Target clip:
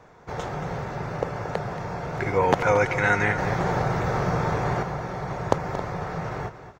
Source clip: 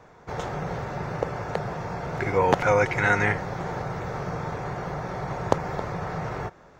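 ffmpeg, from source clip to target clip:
ffmpeg -i in.wav -filter_complex "[0:a]asettb=1/sr,asplit=3[link_01][link_02][link_03];[link_01]atrim=end=3.384[link_04];[link_02]atrim=start=3.38:end=4.83,asetpts=PTS-STARTPTS,afade=type=in:duration=0.004:curve=qsin,afade=type=out:start_time=1.446:duration=0.004:curve=qsin,acontrast=64[link_05];[link_03]atrim=start=4.826[link_06];[link_04][link_05]acrossfade=duration=0.004:curve1=hsin:curve2=qsin[link_07];[link_07][link_06]acrossfade=duration=0.004:curve1=qsin:curve2=hsin,aecho=1:1:228:0.251" out.wav

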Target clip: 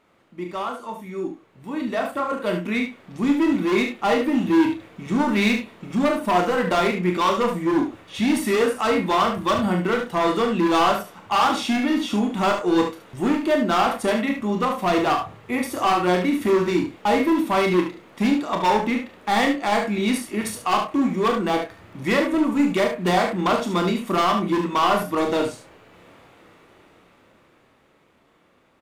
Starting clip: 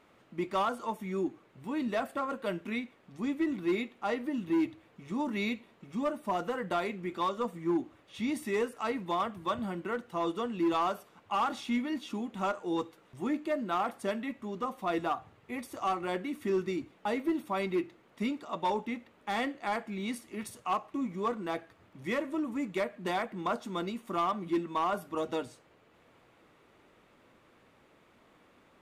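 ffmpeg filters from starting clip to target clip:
ffmpeg -i in.wav -filter_complex "[0:a]dynaudnorm=framelen=160:gausssize=31:maxgain=13dB,volume=17dB,asoftclip=hard,volume=-17dB,asplit=2[link_01][link_02];[link_02]adelay=28,volume=-9dB[link_03];[link_01][link_03]amix=inputs=2:normalize=0,aecho=1:1:39|73:0.398|0.422" out.wav

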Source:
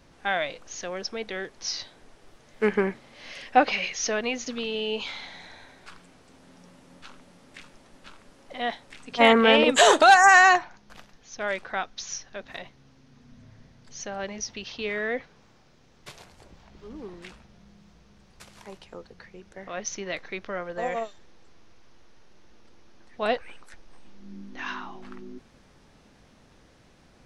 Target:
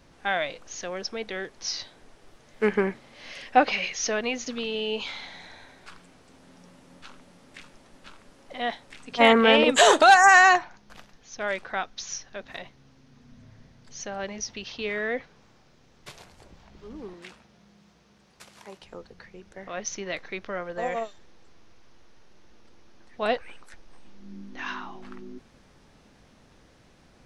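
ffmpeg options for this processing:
ffmpeg -i in.wav -filter_complex "[0:a]asettb=1/sr,asplit=3[link_01][link_02][link_03];[link_01]atrim=end=17.134[link_04];[link_02]atrim=start=17.13:end=18.82,asetpts=PTS-STARTPTS,afade=type=in:duration=0.004:curve=qsin,afade=type=out:start_time=1.686:duration=0.004:curve=qsin,highpass=frequency=200:poles=1[link_05];[link_03]atrim=start=18.816[link_06];[link_04][link_05]acrossfade=duration=0.004:curve1=hsin:curve2=qsin[link_07];[link_07][link_06]acrossfade=duration=0.004:curve1=qsin:curve2=hsin" out.wav

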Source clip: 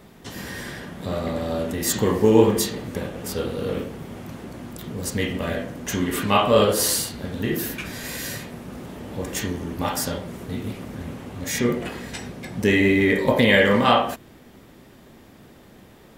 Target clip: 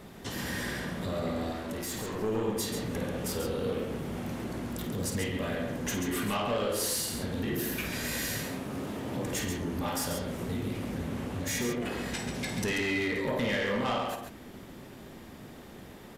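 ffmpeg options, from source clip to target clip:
ffmpeg -i in.wav -filter_complex "[0:a]asettb=1/sr,asplit=3[link_01][link_02][link_03];[link_01]atrim=end=12.344[link_04];[link_02]atrim=start=12.34:end=13.08,asetpts=PTS-STARTPTS,afade=type=in:duration=0.004:curve=qsin,afade=type=out:start_time=0.736:duration=0.004:curve=qsin,equalizer=frequency=5700:width=0.34:gain=9[link_05];[link_03]atrim=start=13.076[link_06];[link_04][link_05]acrossfade=duration=0.004:curve1=hsin:curve2=qsin[link_07];[link_07][link_06]acrossfade=duration=0.004:curve1=qsin:curve2=hsin,acompressor=threshold=-30dB:ratio=2.5,asettb=1/sr,asplit=3[link_08][link_09][link_10];[link_08]atrim=end=1.524[link_11];[link_09]atrim=start=1.52:end=2.19,asetpts=PTS-STARTPTS,afade=type=in:duration=0.004:curve=qsin,afade=type=out:start_time=0.666:duration=0.004:curve=qsin,asoftclip=type=hard:threshold=-35dB[link_12];[link_10]atrim=start=2.186[link_13];[link_11][link_12]acrossfade=duration=0.004:curve1=hsin:curve2=qsin[link_14];[link_14][link_13]acrossfade=duration=0.004:curve1=qsin:curve2=hsin,asettb=1/sr,asplit=3[link_15][link_16][link_17];[link_15]atrim=end=8.434[link_18];[link_16]atrim=start=8.43:end=9.26,asetpts=PTS-STARTPTS,afade=type=in:duration=0.004:curve=qsin,afade=type=out:start_time=0.826:duration=0.004:curve=qsin,afreqshift=25[link_19];[link_17]atrim=start=9.256[link_20];[link_18][link_19]acrossfade=duration=0.004:curve1=hsin:curve2=qsin[link_21];[link_21][link_20]acrossfade=duration=0.004:curve1=qsin:curve2=hsin,asoftclip=type=tanh:threshold=-25.5dB,asplit=2[link_22][link_23];[link_23]aecho=0:1:53|137:0.335|0.473[link_24];[link_22][link_24]amix=inputs=2:normalize=0,aresample=32000,aresample=44100" out.wav

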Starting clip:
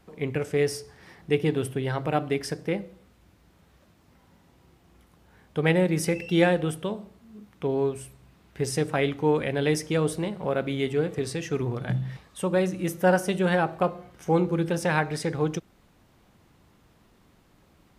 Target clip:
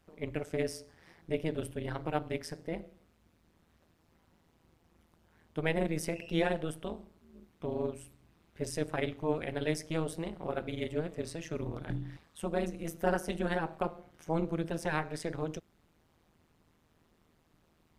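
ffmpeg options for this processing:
ffmpeg -i in.wav -af "tremolo=f=160:d=0.947,volume=-5dB" out.wav

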